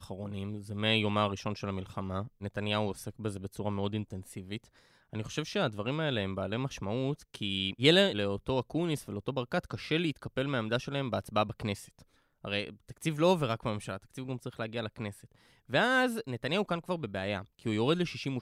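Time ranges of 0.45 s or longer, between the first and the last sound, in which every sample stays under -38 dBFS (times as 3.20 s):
4.57–5.13 s
11.80–12.45 s
15.11–15.71 s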